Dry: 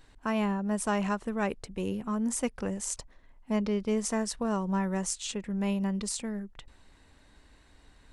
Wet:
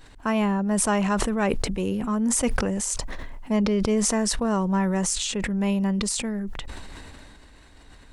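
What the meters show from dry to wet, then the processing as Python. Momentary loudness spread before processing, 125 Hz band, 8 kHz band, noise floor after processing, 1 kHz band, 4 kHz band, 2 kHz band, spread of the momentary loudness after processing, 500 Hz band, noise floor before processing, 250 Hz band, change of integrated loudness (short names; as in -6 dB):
5 LU, +7.0 dB, +9.0 dB, -50 dBFS, +6.0 dB, +9.5 dB, +7.0 dB, 14 LU, +6.0 dB, -60 dBFS, +6.5 dB, +7.0 dB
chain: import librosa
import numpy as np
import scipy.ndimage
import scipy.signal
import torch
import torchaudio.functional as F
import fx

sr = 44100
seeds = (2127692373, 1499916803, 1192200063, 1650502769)

y = 10.0 ** (-15.5 / 20.0) * np.tanh(x / 10.0 ** (-15.5 / 20.0))
y = fx.sustainer(y, sr, db_per_s=20.0)
y = y * 10.0 ** (6.0 / 20.0)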